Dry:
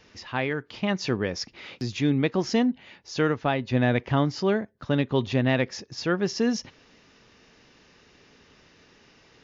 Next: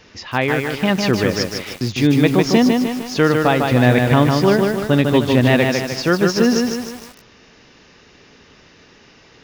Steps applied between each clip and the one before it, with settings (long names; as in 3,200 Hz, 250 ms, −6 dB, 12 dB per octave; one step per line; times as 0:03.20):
feedback echo at a low word length 152 ms, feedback 55%, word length 7 bits, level −3.5 dB
level +8.5 dB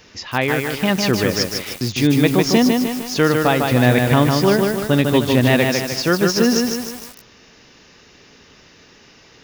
high-shelf EQ 6,700 Hz +10.5 dB
level −1 dB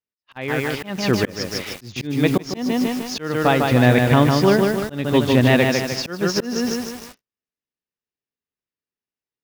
high-shelf EQ 6,500 Hz −7.5 dB
volume swells 298 ms
noise gate −39 dBFS, range −49 dB